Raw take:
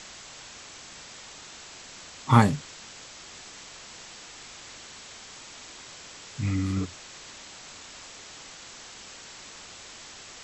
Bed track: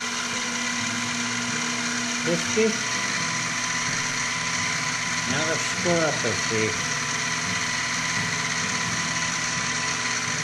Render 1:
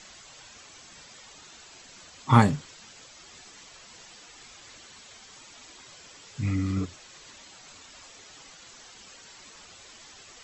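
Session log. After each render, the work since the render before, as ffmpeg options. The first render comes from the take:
-af "afftdn=nr=9:nf=-46"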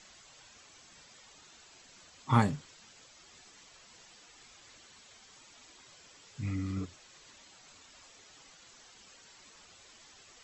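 -af "volume=-7.5dB"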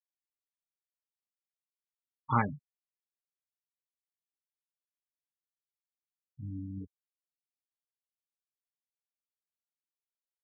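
-af "afftfilt=real='re*gte(hypot(re,im),0.0447)':imag='im*gte(hypot(re,im),0.0447)':win_size=1024:overlap=0.75,tiltshelf=f=970:g=-5.5"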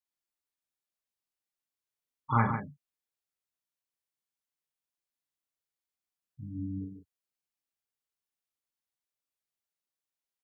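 -filter_complex "[0:a]asplit=2[a][b];[b]adelay=35,volume=-6dB[c];[a][c]amix=inputs=2:normalize=0,aecho=1:1:53|146:0.316|0.422"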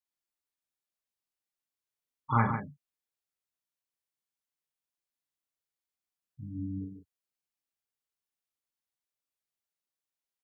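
-af anull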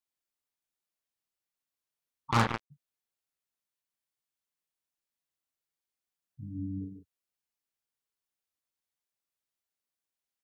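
-filter_complex "[0:a]asplit=3[a][b][c];[a]afade=t=out:st=2.3:d=0.02[d];[b]acrusher=bits=3:mix=0:aa=0.5,afade=t=in:st=2.3:d=0.02,afade=t=out:st=2.7:d=0.02[e];[c]afade=t=in:st=2.7:d=0.02[f];[d][e][f]amix=inputs=3:normalize=0"

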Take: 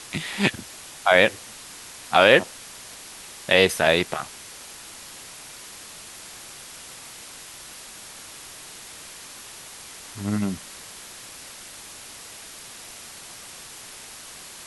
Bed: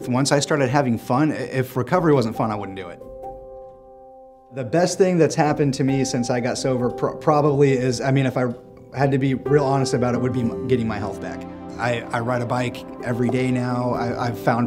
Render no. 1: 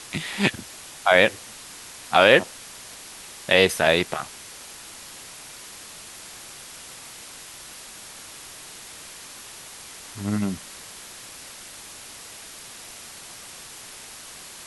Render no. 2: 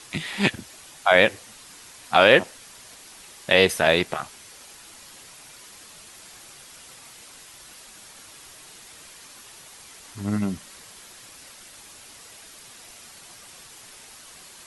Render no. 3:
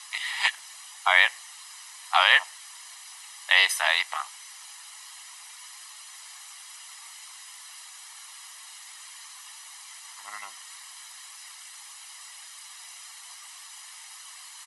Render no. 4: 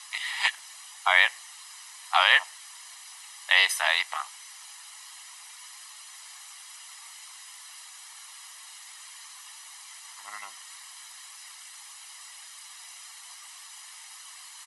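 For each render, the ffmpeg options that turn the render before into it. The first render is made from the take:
-af anull
-af "afftdn=nr=6:nf=-42"
-af "highpass=f=900:w=0.5412,highpass=f=900:w=1.3066,aecho=1:1:1:0.55"
-af "volume=-1dB"

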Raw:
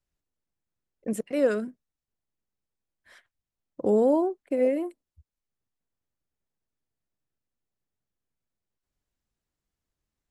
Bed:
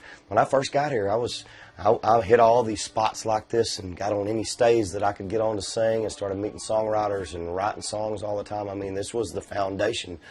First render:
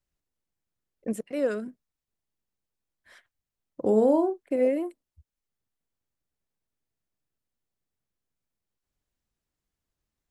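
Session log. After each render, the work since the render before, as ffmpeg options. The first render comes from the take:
-filter_complex "[0:a]asettb=1/sr,asplit=3[a][b][c];[a]atrim=end=3.834[d];[b]atrim=start=3.83:end=4.56,asetpts=PTS-STARTPTS,afade=t=in:d=0.004:c=qsin,afade=t=out:st=0.726:d=0.004:c=qsin,asplit=2[e][f];[f]adelay=37,volume=-9.5dB[g];[e][g]amix=inputs=2:normalize=0,atrim=end_sample=32193[h];[c]atrim=start=4.556[i];[d][h]acrossfade=d=0.004:c1=hsin:c2=qsin[j];[j][i]acrossfade=d=0.004:c1=qsin:c2=hsin,asplit=3[k][l][m];[k]atrim=end=1.122[n];[l]atrim=start=1.118:end=1.662,asetpts=PTS-STARTPTS,volume=-3.5dB[o];[m]atrim=start=1.658[p];[n][o]acrossfade=d=0.004:c1=hsin:c2=hsin[q];[q][p]acrossfade=d=0.004:c1=hsin:c2=hsin"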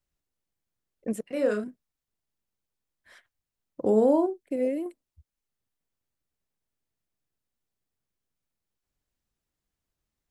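-filter_complex "[0:a]asettb=1/sr,asplit=3[a][b][c];[a]atrim=end=1.244[d];[b]atrim=start=1.24:end=1.64,asetpts=PTS-STARTPTS,afade=t=in:d=0.004:c=qsin,afade=t=out:st=0.396:d=0.004:c=qsin,asplit=2[e][f];[f]adelay=33,volume=-4dB[g];[e][g]amix=inputs=2:normalize=0,atrim=end_sample=17640[h];[c]atrim=start=1.636[i];[d][h]acrossfade=d=0.004:c1=hsin:c2=qsin[j];[j][i]acrossfade=d=0.004:c1=qsin:c2=hsin,asettb=1/sr,asplit=3[k][l][m];[k]atrim=end=4.264[n];[l]atrim=start=4.26:end=4.86,asetpts=PTS-STARTPTS,afade=t=in:d=0.004:c=qsin,afade=t=out:st=0.596:d=0.004:c=qsin,equalizer=f=1.1k:t=o:w=1.8:g=-11[o];[m]atrim=start=4.856[p];[n][o]acrossfade=d=0.004:c1=hsin:c2=qsin[q];[q][p]acrossfade=d=0.004:c1=qsin:c2=hsin"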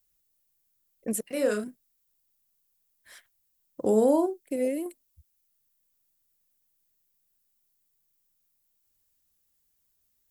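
-af "aemphasis=mode=production:type=75fm"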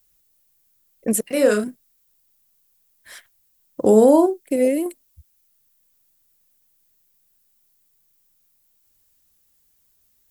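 -af "volume=9.5dB,alimiter=limit=-3dB:level=0:latency=1"

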